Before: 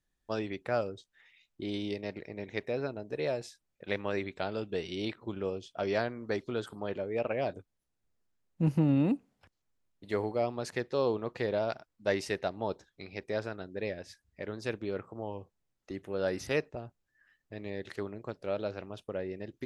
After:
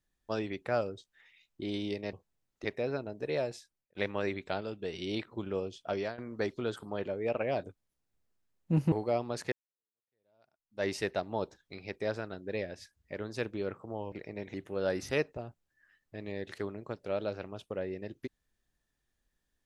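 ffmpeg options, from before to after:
-filter_complex "[0:a]asplit=11[a][b][c][d][e][f][g][h][i][j][k];[a]atrim=end=2.132[l];[b]atrim=start=15.398:end=15.922[m];[c]atrim=start=2.548:end=3.85,asetpts=PTS-STARTPTS,afade=t=out:st=0.722:d=0.58:c=qsin[n];[d]atrim=start=3.85:end=4.512,asetpts=PTS-STARTPTS,afade=t=in:d=0.004:c=hsin[o];[e]atrim=start=4.508:end=4.832,asetpts=PTS-STARTPTS,volume=-3.5dB[p];[f]atrim=start=4.828:end=6.08,asetpts=PTS-STARTPTS,afade=t=out:st=0.982:d=0.27:silence=0.125893[q];[g]atrim=start=6.08:end=8.822,asetpts=PTS-STARTPTS,afade=t=in:d=0.004:c=hsin:silence=0.125893[r];[h]atrim=start=10.198:end=10.8,asetpts=PTS-STARTPTS,afade=t=out:st=0.598:d=0.004:c=hsin[s];[i]atrim=start=10.8:end=15.402,asetpts=PTS-STARTPTS,afade=t=in:d=1.36:c=exp[t];[j]atrim=start=2.128:end=2.552[u];[k]atrim=start=15.918[v];[l][m]acrossfade=d=0.004:c1=hsin:c2=hsin[w];[n][o]concat=n=2:v=0:a=1[x];[w][x]acrossfade=d=0.004:c1=hsin:c2=hsin[y];[y][p]acrossfade=d=0.004:c1=hsin:c2=hsin[z];[q][r]concat=n=2:v=0:a=1[aa];[z][aa]acrossfade=d=0.004:c1=hsin:c2=hsin[ab];[s][t]concat=n=2:v=0:a=1[ac];[ab][ac]acrossfade=d=0.004:c1=hsin:c2=hsin[ad];[ad][u]acrossfade=d=0.004:c1=hsin:c2=hsin[ae];[ae][v]acrossfade=d=0.004:c1=hsin:c2=hsin"

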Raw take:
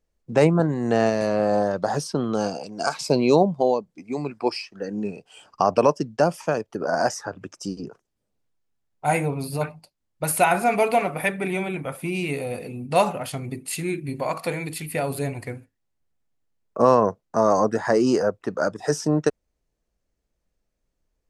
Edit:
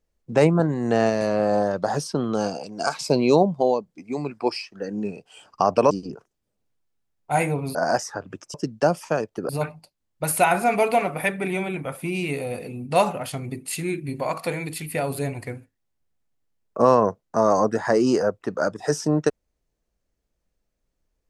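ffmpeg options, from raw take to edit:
-filter_complex "[0:a]asplit=5[a][b][c][d][e];[a]atrim=end=5.912[f];[b]atrim=start=7.648:end=9.492[g];[c]atrim=start=6.858:end=7.652[h];[d]atrim=start=5.908:end=6.862[i];[e]atrim=start=9.488[j];[f][g]acrossfade=d=0.004:c1=hsin:c2=hsin[k];[k][h]acrossfade=d=0.004:c1=hsin:c2=hsin[l];[l][i]acrossfade=d=0.004:c1=hsin:c2=hsin[m];[m][j]acrossfade=d=0.004:c1=hsin:c2=hsin"

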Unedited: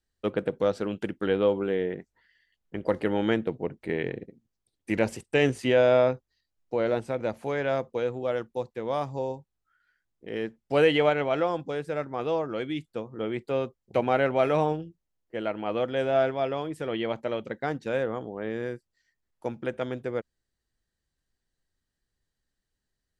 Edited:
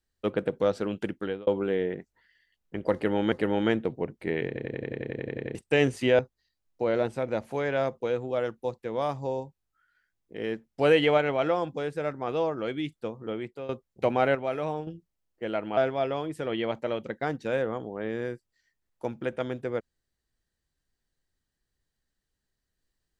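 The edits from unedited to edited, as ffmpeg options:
-filter_complex "[0:a]asplit=20[a][b][c][d][e][f][g][h][i][j][k][l][m][n][o][p][q][r][s][t];[a]atrim=end=1.47,asetpts=PTS-STARTPTS,afade=t=out:st=1.12:d=0.35[u];[b]atrim=start=1.47:end=3.322,asetpts=PTS-STARTPTS,afade=t=in:d=0.004:c=hsin[v];[c]atrim=start=2.938:end=4.182[w];[d]atrim=start=4.088:end=4.182[x];[e]atrim=start=4.088:end=4.182[y];[f]atrim=start=4.088:end=4.182[z];[g]atrim=start=4.088:end=4.182[aa];[h]atrim=start=4.088:end=4.182[ab];[i]atrim=start=4.088:end=4.182[ac];[j]atrim=start=4.088:end=4.182[ad];[k]atrim=start=4.088:end=4.182[ae];[l]atrim=start=4.088:end=4.182[af];[m]atrim=start=4.088:end=4.182[ag];[n]atrim=start=4.088:end=4.182[ah];[o]atrim=start=5.168:end=5.812[ai];[p]atrim=start=6.108:end=13.61,asetpts=PTS-STARTPTS,afade=t=out:st=7.002:d=0.5:silence=0.199526[aj];[q]atrim=start=13.61:end=14.272,asetpts=PTS-STARTPTS,afade=t=in:d=0.004:c=hsin:silence=0.199526[ak];[r]atrim=start=14.268:end=14.792,asetpts=PTS-STARTPTS,volume=-7dB[al];[s]atrim=start=14.788:end=15.692[am];[t]atrim=start=16.178[an];[u][v]concat=n=2:v=0:a=1[ao];[ao][w]acrossfade=d=0.004:c1=hsin:c2=hsin[ap];[ap][x]acrossfade=d=0.004:c1=hsin:c2=hsin[aq];[aq][y]acrossfade=d=0.004:c1=hsin:c2=hsin[ar];[ar][z]acrossfade=d=0.004:c1=hsin:c2=hsin[as];[as][aa]acrossfade=d=0.004:c1=hsin:c2=hsin[at];[at][ab]acrossfade=d=0.004:c1=hsin:c2=hsin[au];[au][ac]acrossfade=d=0.004:c1=hsin:c2=hsin[av];[av][ad]acrossfade=d=0.004:c1=hsin:c2=hsin[aw];[aw][ae]acrossfade=d=0.004:c1=hsin:c2=hsin[ax];[ax][af]acrossfade=d=0.004:c1=hsin:c2=hsin[ay];[ay][ag]acrossfade=d=0.004:c1=hsin:c2=hsin[az];[az][ah]acrossfade=d=0.004:c1=hsin:c2=hsin[ba];[ba][ai]acrossfade=d=0.004:c1=hsin:c2=hsin[bb];[aj][ak]concat=n=2:v=0:a=1[bc];[bb][bc]acrossfade=d=0.004:c1=hsin:c2=hsin[bd];[bd][al]acrossfade=d=0.004:c1=hsin:c2=hsin[be];[be][am]acrossfade=d=0.004:c1=hsin:c2=hsin[bf];[bf][an]acrossfade=d=0.004:c1=hsin:c2=hsin"

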